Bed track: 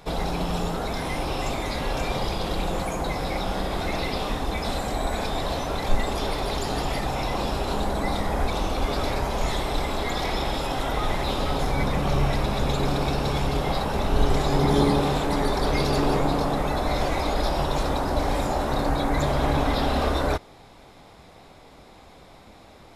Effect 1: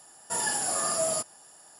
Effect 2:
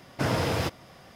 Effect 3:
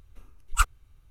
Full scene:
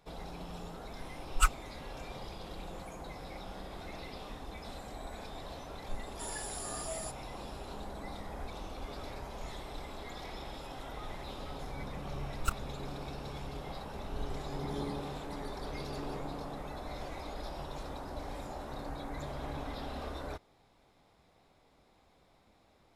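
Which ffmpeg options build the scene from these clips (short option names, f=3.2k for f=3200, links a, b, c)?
-filter_complex "[3:a]asplit=2[a][b];[0:a]volume=-17.5dB[c];[a]aecho=1:1:5.4:0.96[d];[b]aeval=exprs='max(val(0),0)':c=same[e];[d]atrim=end=1.1,asetpts=PTS-STARTPTS,volume=-6.5dB,afade=t=in:d=0.004:c=hsin,afade=t=out:st=1.096:d=0.004:c=hsin,adelay=830[f];[1:a]atrim=end=1.79,asetpts=PTS-STARTPTS,volume=-13.5dB,afade=t=in:d=0.004:c=hsin,afade=t=out:st=1.786:d=0.004:c=hsin,adelay=259749S[g];[e]atrim=end=1.1,asetpts=PTS-STARTPTS,volume=-7.5dB,afade=t=in:d=0.004:c=hsin,afade=t=out:st=1.096:d=0.004:c=hsin,adelay=11880[h];[c][f][g][h]amix=inputs=4:normalize=0"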